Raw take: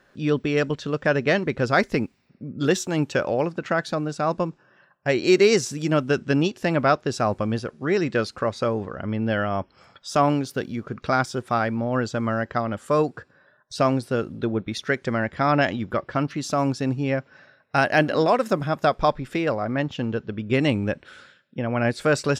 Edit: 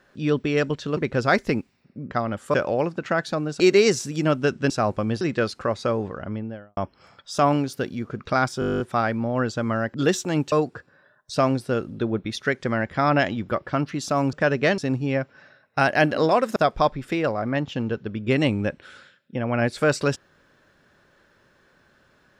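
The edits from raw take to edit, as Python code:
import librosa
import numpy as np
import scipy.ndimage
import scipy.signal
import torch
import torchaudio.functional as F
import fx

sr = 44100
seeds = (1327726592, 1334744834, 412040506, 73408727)

y = fx.studio_fade_out(x, sr, start_s=8.87, length_s=0.67)
y = fx.edit(y, sr, fx.move(start_s=0.97, length_s=0.45, to_s=16.75),
    fx.swap(start_s=2.56, length_s=0.58, other_s=12.51, other_length_s=0.43),
    fx.cut(start_s=4.2, length_s=1.06),
    fx.cut(start_s=6.36, length_s=0.76),
    fx.cut(start_s=7.63, length_s=0.35),
    fx.stutter(start_s=11.37, slice_s=0.02, count=11),
    fx.cut(start_s=18.53, length_s=0.26), tone=tone)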